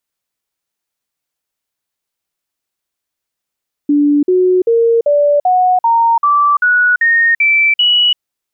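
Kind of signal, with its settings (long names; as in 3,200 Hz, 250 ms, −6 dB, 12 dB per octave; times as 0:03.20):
stepped sweep 291 Hz up, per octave 3, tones 11, 0.34 s, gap 0.05 s −7.5 dBFS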